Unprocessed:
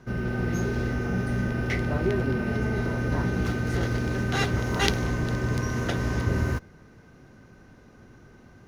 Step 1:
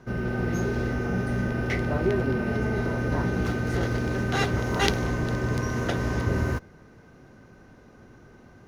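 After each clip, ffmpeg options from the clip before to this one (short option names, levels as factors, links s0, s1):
-af "equalizer=f=620:w=0.55:g=3.5,volume=0.891"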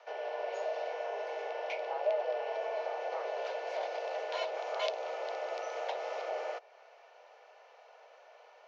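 -filter_complex "[0:a]highpass=f=320:w=0.5412,highpass=f=320:w=1.3066,equalizer=f=330:t=q:w=4:g=-4,equalizer=f=900:t=q:w=4:g=-5,equalizer=f=1500:t=q:w=4:g=-10,equalizer=f=2500:t=q:w=4:g=4,lowpass=f=5000:w=0.5412,lowpass=f=5000:w=1.3066,acrossover=split=430[s0][s1];[s1]acompressor=threshold=0.00447:ratio=2[s2];[s0][s2]amix=inputs=2:normalize=0,afreqshift=230"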